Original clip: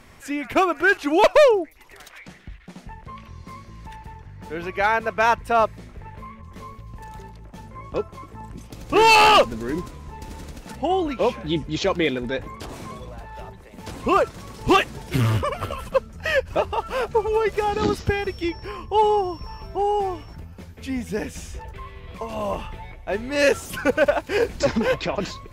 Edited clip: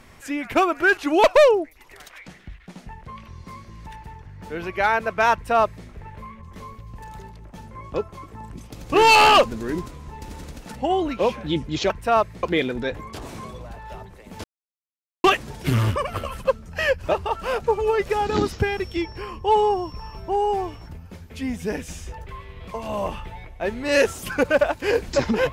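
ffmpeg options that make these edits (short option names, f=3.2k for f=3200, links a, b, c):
-filter_complex "[0:a]asplit=5[a][b][c][d][e];[a]atrim=end=11.902[f];[b]atrim=start=5.328:end=5.862[g];[c]atrim=start=11.898:end=13.91,asetpts=PTS-STARTPTS,afade=t=out:st=2.008:d=0.004:c=hsin[h];[d]atrim=start=13.91:end=14.71,asetpts=PTS-STARTPTS,volume=0[i];[e]atrim=start=14.71,asetpts=PTS-STARTPTS,afade=t=in:d=0.004:c=hsin[j];[f][g]acrossfade=d=0.004:c1=hsin:c2=hsin[k];[h][i][j]concat=n=3:v=0:a=1[l];[k][l]acrossfade=d=0.004:c1=hsin:c2=hsin"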